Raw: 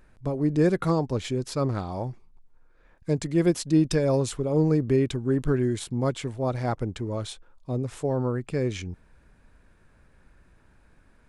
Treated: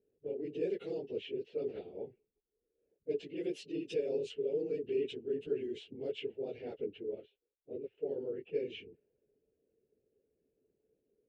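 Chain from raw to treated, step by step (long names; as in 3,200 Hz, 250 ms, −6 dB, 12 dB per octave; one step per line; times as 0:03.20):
random phases in long frames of 50 ms
low-pass that shuts in the quiet parts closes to 570 Hz, open at −19 dBFS
harmonic and percussive parts rebalanced harmonic −5 dB
in parallel at +2 dB: brickwall limiter −22.5 dBFS, peak gain reduction 10.5 dB
on the sum: pair of resonant band-passes 1,100 Hz, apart 2.7 octaves
0:07.15–0:07.98: expander for the loud parts 1.5 to 1, over −58 dBFS
level −5 dB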